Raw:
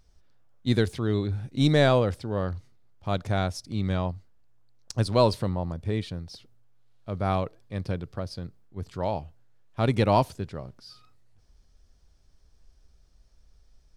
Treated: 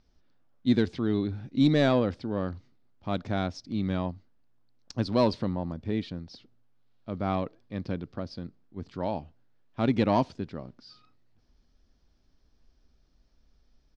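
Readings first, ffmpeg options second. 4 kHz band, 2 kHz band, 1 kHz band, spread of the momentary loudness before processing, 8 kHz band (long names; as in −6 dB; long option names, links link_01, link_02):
−4.0 dB, −4.0 dB, −3.5 dB, 18 LU, can't be measured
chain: -af "lowpass=frequency=5400:width=0.5412,lowpass=frequency=5400:width=1.3066,asoftclip=type=tanh:threshold=-12dB,firequalizer=gain_entry='entry(110,0);entry(250,12);entry(420,4)':delay=0.05:min_phase=1,volume=-6.5dB"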